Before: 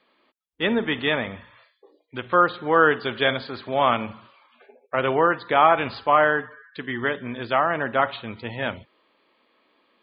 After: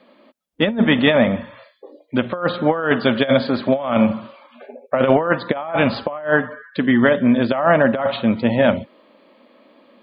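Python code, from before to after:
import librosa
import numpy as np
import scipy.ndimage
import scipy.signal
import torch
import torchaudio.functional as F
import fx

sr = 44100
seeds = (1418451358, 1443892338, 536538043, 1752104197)

y = fx.dynamic_eq(x, sr, hz=340.0, q=1.1, threshold_db=-32.0, ratio=4.0, max_db=-5)
y = fx.small_body(y, sr, hz=(230.0, 560.0), ring_ms=25, db=14)
y = fx.over_compress(y, sr, threshold_db=-18.0, ratio=-0.5)
y = y * librosa.db_to_amplitude(3.0)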